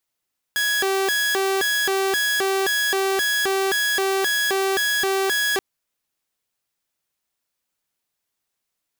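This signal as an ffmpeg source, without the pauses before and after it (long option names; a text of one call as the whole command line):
ffmpeg -f lavfi -i "aevalsrc='0.15*(2*mod((1028.5*t+641.5/1.9*(0.5-abs(mod(1.9*t,1)-0.5))),1)-1)':duration=5.03:sample_rate=44100" out.wav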